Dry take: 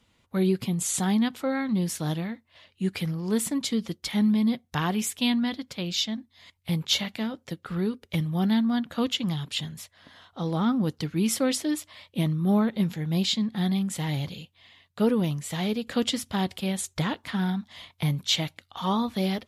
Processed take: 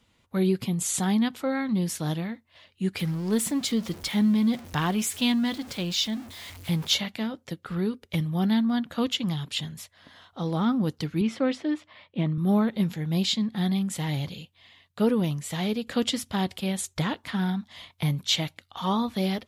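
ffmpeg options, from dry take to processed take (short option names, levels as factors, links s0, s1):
-filter_complex "[0:a]asettb=1/sr,asplit=3[s0][s1][s2];[s0]atrim=end=2.994[s3];[s1]atrim=start=2.99:end=6.94,asetpts=PTS-STARTPTS,afade=t=in:d=0.004:c=qsin,afade=t=out:st=3.946:d=0.004:c=qsin,aeval=exprs='val(0)+0.5*0.0126*sgn(val(0))':c=same[s4];[s2]atrim=start=6.936[s5];[s3][s4]acrossfade=d=0.004:c1=hsin:c2=qsin[s6];[s6][s5]acrossfade=d=0.004:c1=qsin:c2=hsin,asettb=1/sr,asplit=3[s7][s8][s9];[s7]atrim=end=11.214[s10];[s8]atrim=start=11.21:end=12.38,asetpts=PTS-STARTPTS,afade=t=in:d=0.004:c=qsin,afade=t=out:st=1.166:d=0.004:c=qsin,highpass=110,lowpass=2600[s11];[s9]atrim=start=12.376[s12];[s10][s11]acrossfade=d=0.004:c1=hsin:c2=qsin[s13];[s13][s12]acrossfade=d=0.004:c1=qsin:c2=hsin"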